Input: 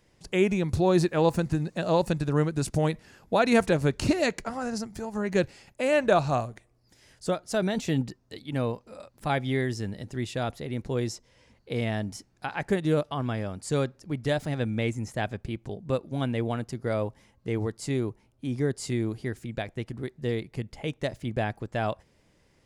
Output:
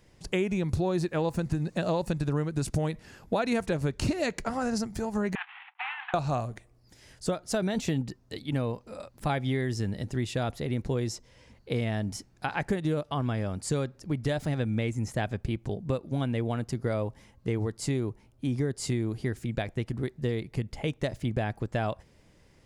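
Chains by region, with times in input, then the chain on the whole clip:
5.35–6.14 CVSD 16 kbps + brick-wall FIR high-pass 720 Hz + negative-ratio compressor -39 dBFS
whole clip: low shelf 150 Hz +4.5 dB; compressor, threshold -27 dBFS; gain +2.5 dB

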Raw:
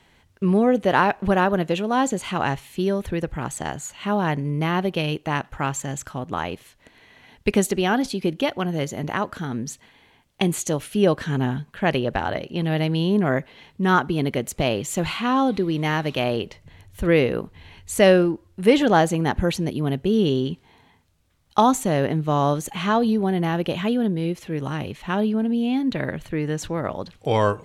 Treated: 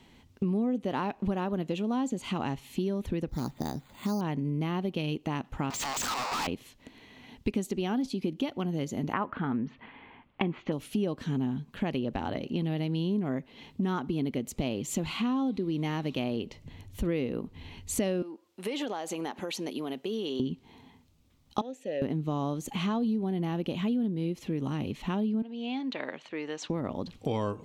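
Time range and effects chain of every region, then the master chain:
3.29–4.21 air absorption 360 m + careless resampling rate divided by 8×, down filtered, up hold
5.7–6.47 infinite clipping + HPF 850 Hz 24 dB/oct + overdrive pedal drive 28 dB, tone 4500 Hz, clips at -19 dBFS
9.13–10.72 inverse Chebyshev low-pass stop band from 8600 Hz, stop band 60 dB + bell 1300 Hz +11 dB 2 oct
18.22–20.4 HPF 550 Hz + compressor 4:1, threshold -29 dBFS
21.61–22.02 vowel filter e + high shelf 3900 Hz +10 dB
25.42–26.7 BPF 690–8000 Hz + air absorption 74 m
whole clip: fifteen-band EQ 250 Hz +8 dB, 630 Hz -3 dB, 1600 Hz -8 dB, 10000 Hz -5 dB; compressor 4:1, threshold -29 dBFS

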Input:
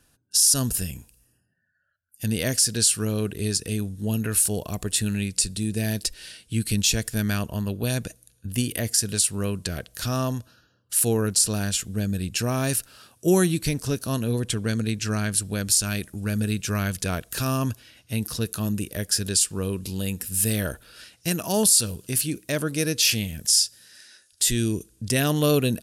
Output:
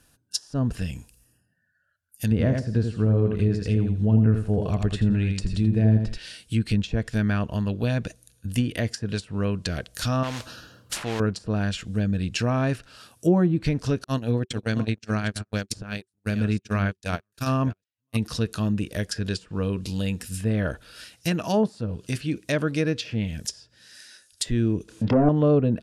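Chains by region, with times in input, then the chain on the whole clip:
2.31–6.18 low shelf 130 Hz +8 dB + feedback echo 82 ms, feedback 23%, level -5.5 dB
10.23–11.2 modulation noise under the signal 19 dB + spectral compressor 2:1
14.04–18.17 reverse delay 0.424 s, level -11.5 dB + gate -26 dBFS, range -49 dB
24.88–25.29 treble ducked by the level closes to 490 Hz, closed at -23.5 dBFS + overdrive pedal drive 26 dB, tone 2200 Hz, clips at -12 dBFS + doubler 27 ms -8 dB
whole clip: treble ducked by the level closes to 920 Hz, closed at -17 dBFS; notch 380 Hz, Q 12; gain +2 dB

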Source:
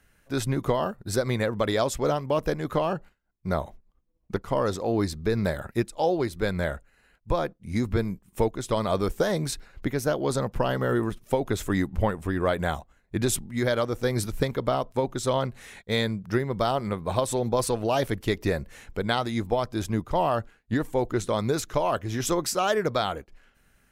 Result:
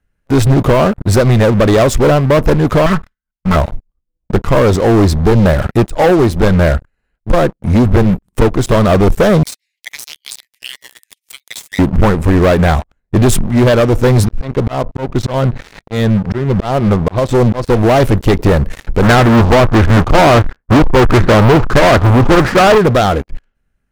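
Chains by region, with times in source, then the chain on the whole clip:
2.86–3.56 minimum comb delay 0.57 ms + resonant low shelf 770 Hz -7 dB, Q 1.5 + comb 4.6 ms, depth 61%
9.43–11.79 steep high-pass 1900 Hz 96 dB/oct + high shelf 3900 Hz +8 dB + compressor 5:1, threshold -34 dBFS
14.25–17.7 auto swell 0.284 s + air absorption 130 m
19.02–22.78 half-waves squared off + LFO low-pass sine 1.5 Hz 880–1800 Hz
whole clip: tilt -2 dB/oct; sample leveller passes 5

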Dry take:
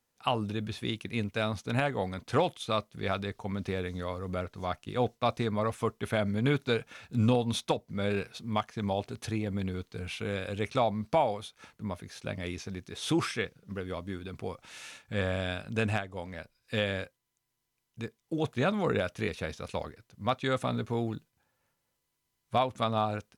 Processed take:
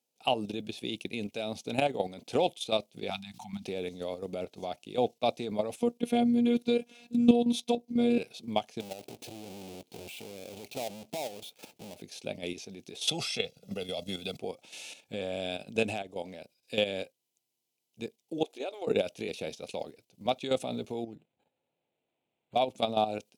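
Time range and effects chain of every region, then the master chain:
3.1–3.65 elliptic band-stop 230–770 Hz + notches 60/120/180/240/300/360/420 Hz + backwards sustainer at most 110 dB/s
5.8–8.18 bell 160 Hz +11.5 dB 1.9 oct + robotiser 239 Hz
8.8–12.02 half-waves squared off + compressor 2.5:1, threshold -43 dBFS
13.07–14.37 dynamic EQ 4400 Hz, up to +7 dB, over -54 dBFS, Q 1.3 + comb 1.5 ms, depth 70% + three-band squash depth 70%
18.43–18.87 brick-wall FIR high-pass 260 Hz + compressor 2:1, threshold -42 dBFS
21.04–22.56 low shelf 84 Hz +7.5 dB + compressor 10:1, threshold -38 dBFS + decimation joined by straight lines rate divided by 8×
whole clip: HPF 240 Hz 12 dB/oct; band shelf 1400 Hz -15 dB 1.2 oct; level quantiser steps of 10 dB; gain +5.5 dB

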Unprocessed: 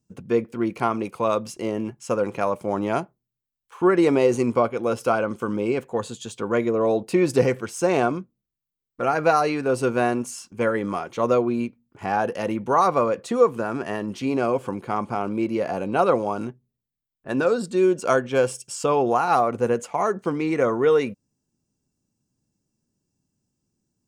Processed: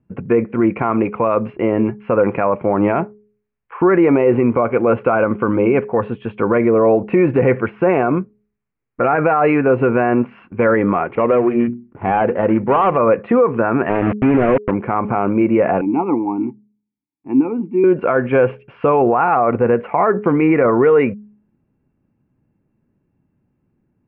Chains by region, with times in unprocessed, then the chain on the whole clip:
11.15–12.97 median filter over 25 samples + notches 60/120/180/240/300/360 Hz
13.89–14.71 delta modulation 32 kbps, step -37 dBFS + tilt shelf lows +3.5 dB, about 700 Hz + sample gate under -26 dBFS
15.81–17.84 vowel filter u + low shelf 340 Hz +11 dB
whole clip: steep low-pass 2500 Hz 48 dB/oct; de-hum 209.5 Hz, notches 2; maximiser +16.5 dB; gain -4.5 dB

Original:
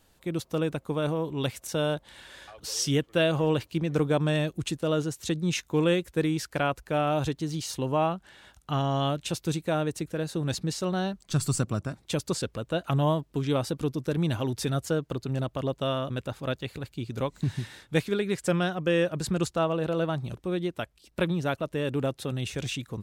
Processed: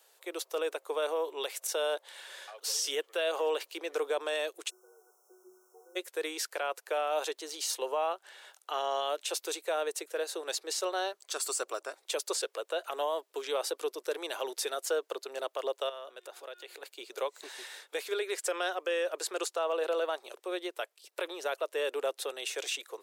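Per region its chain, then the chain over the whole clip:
4.69–5.95 octave resonator F#, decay 0.71 s + added noise pink -67 dBFS + brick-wall FIR band-stop 1500–5200 Hz
15.89–16.83 de-hum 359.3 Hz, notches 29 + compressor 5:1, threshold -39 dBFS
whole clip: steep high-pass 400 Hz 48 dB/oct; high shelf 6100 Hz +5.5 dB; limiter -22.5 dBFS

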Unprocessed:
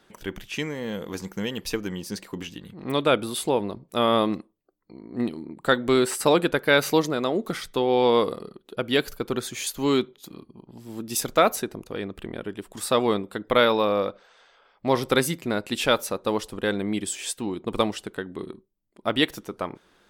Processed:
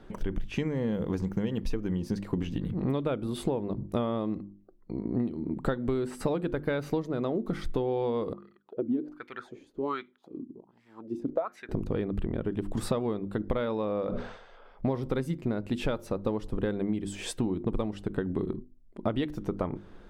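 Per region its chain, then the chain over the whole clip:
8.33–11.69 high shelf 3200 Hz +11 dB + wah 1.3 Hz 250–2100 Hz, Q 5.5
14.06–14.87 notches 60/120/180/240/300/360/420 Hz + sustainer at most 84 dB/s
whole clip: tilt -4 dB/oct; notches 50/100/150/200/250/300/350 Hz; compressor 16:1, threshold -29 dBFS; gain +3.5 dB

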